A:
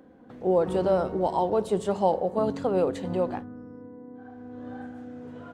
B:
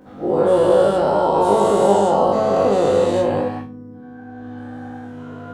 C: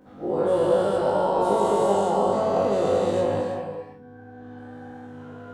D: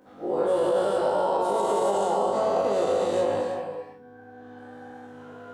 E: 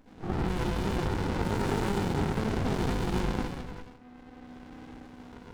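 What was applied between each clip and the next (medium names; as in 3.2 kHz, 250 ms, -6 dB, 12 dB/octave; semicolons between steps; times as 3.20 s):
every event in the spectrogram widened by 480 ms; on a send: flutter echo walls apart 3.4 m, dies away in 0.28 s
gated-style reverb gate 370 ms rising, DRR 6.5 dB; trim -7 dB
tone controls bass -10 dB, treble +2 dB; peak limiter -15 dBFS, peak gain reduction 5.5 dB
frequency weighting D; sliding maximum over 65 samples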